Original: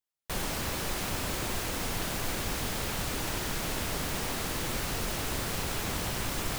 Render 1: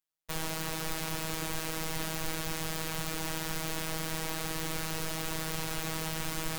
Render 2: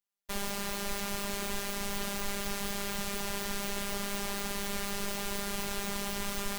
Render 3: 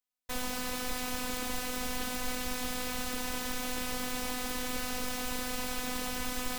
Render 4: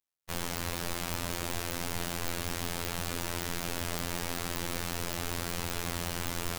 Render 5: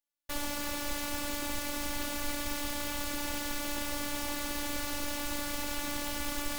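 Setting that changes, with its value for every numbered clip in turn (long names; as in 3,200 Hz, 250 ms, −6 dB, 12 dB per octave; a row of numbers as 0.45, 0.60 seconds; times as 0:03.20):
phases set to zero, frequency: 160, 200, 250, 86, 290 Hertz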